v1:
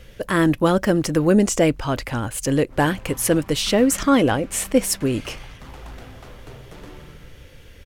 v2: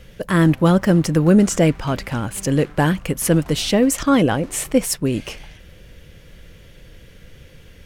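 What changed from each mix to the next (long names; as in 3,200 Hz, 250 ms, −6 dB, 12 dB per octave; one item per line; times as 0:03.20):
speech: add parametric band 170 Hz +8.5 dB 0.47 octaves
background: entry −2.40 s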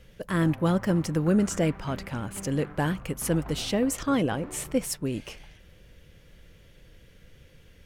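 speech −9.5 dB
background: add low-pass filter 1,700 Hz 12 dB per octave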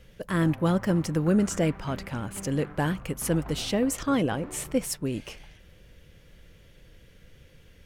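nothing changed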